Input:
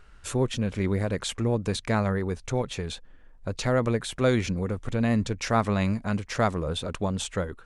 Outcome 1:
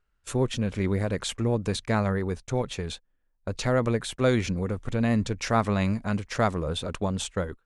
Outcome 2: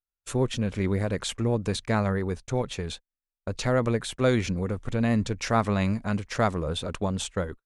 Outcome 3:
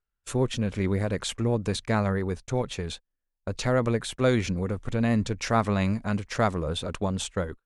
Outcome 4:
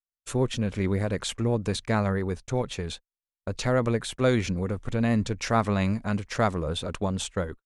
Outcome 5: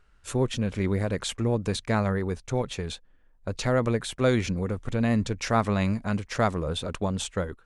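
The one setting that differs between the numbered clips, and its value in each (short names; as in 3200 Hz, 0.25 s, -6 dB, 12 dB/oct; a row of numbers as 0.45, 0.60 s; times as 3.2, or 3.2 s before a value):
gate, range: -22, -46, -34, -58, -9 dB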